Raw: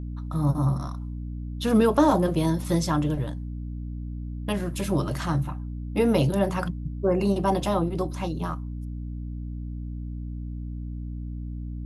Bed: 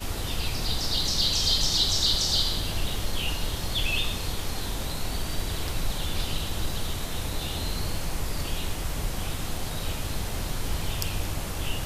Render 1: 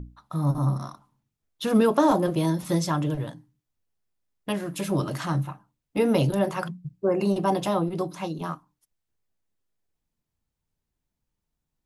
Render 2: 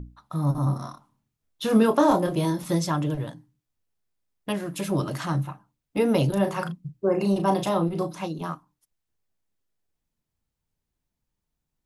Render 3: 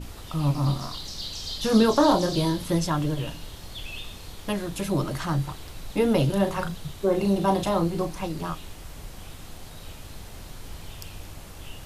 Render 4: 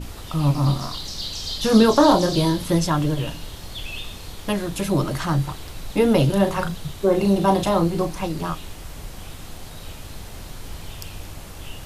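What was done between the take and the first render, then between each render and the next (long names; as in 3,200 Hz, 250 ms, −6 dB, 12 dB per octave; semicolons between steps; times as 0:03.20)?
mains-hum notches 60/120/180/240/300 Hz
0:00.64–0:02.65: double-tracking delay 27 ms −7 dB; 0:06.33–0:08.26: double-tracking delay 36 ms −8 dB
mix in bed −10.5 dB
level +4.5 dB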